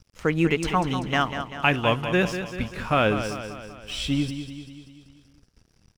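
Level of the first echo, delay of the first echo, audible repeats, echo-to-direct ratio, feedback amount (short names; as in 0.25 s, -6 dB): -9.5 dB, 0.194 s, 5, -8.0 dB, 55%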